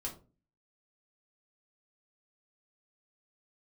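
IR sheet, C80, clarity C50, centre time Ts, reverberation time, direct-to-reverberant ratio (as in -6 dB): 16.0 dB, 11.0 dB, 16 ms, 0.35 s, -2.0 dB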